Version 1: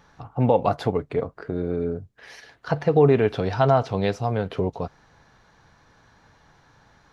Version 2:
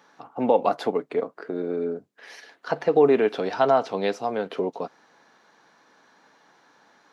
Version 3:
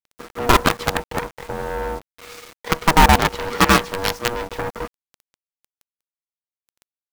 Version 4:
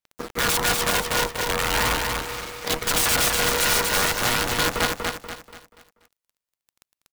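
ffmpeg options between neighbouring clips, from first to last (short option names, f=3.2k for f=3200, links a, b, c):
-af "highpass=f=230:w=0.5412,highpass=f=230:w=1.3066"
-af "acrusher=bits=5:dc=4:mix=0:aa=0.000001,aeval=exprs='0.398*(cos(1*acos(clip(val(0)/0.398,-1,1)))-cos(1*PI/2))+0.158*(cos(7*acos(clip(val(0)/0.398,-1,1)))-cos(7*PI/2))':c=same,aeval=exprs='val(0)*sin(2*PI*480*n/s)':c=same,volume=6.5dB"
-filter_complex "[0:a]aeval=exprs='(mod(7.5*val(0)+1,2)-1)/7.5':c=same,aphaser=in_gain=1:out_gain=1:delay=2.1:decay=0.27:speed=0.41:type=sinusoidal,asplit=2[a][b];[b]aecho=0:1:241|482|723|964|1205:0.668|0.254|0.0965|0.0367|0.0139[c];[a][c]amix=inputs=2:normalize=0,volume=3dB"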